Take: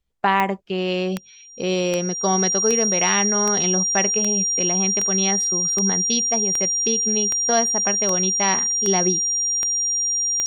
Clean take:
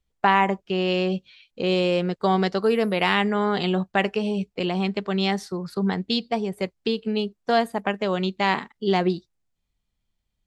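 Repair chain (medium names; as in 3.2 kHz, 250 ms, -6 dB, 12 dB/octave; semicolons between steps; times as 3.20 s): de-click; band-stop 5.7 kHz, Q 30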